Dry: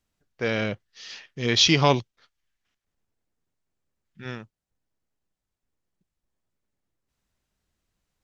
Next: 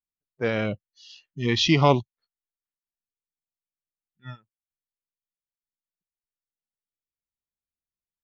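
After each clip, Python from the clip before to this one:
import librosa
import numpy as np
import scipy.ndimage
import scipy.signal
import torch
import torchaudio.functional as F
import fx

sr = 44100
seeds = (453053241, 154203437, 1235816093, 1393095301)

y = fx.noise_reduce_blind(x, sr, reduce_db=26)
y = fx.lowpass(y, sr, hz=1800.0, slope=6)
y = y * librosa.db_to_amplitude(2.0)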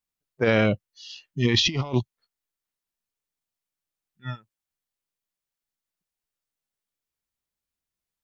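y = fx.over_compress(x, sr, threshold_db=-24.0, ratio=-0.5)
y = y * librosa.db_to_amplitude(3.0)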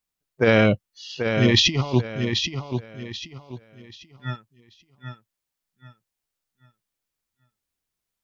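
y = fx.echo_feedback(x, sr, ms=785, feedback_pct=30, wet_db=-7.0)
y = y * librosa.db_to_amplitude(3.5)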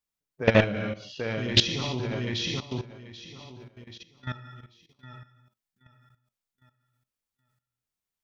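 y = fx.rev_gated(x, sr, seeds[0], gate_ms=410, shape='falling', drr_db=4.5)
y = fx.level_steps(y, sr, step_db=15)
y = fx.doppler_dist(y, sr, depth_ms=0.27)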